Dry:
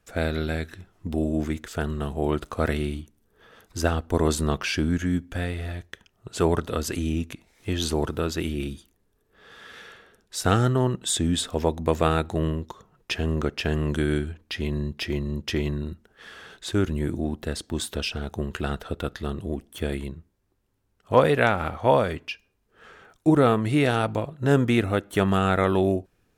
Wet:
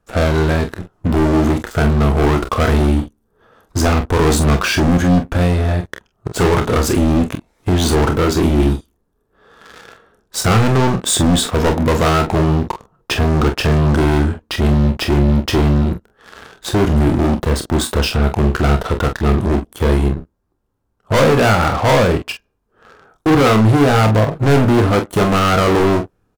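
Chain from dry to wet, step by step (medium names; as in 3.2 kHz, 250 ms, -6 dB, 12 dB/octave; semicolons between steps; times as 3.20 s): resonant high shelf 1.6 kHz -7 dB, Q 1.5; waveshaping leveller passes 3; saturation -19.5 dBFS, distortion -7 dB; early reflections 28 ms -9 dB, 45 ms -9.5 dB; trim +8.5 dB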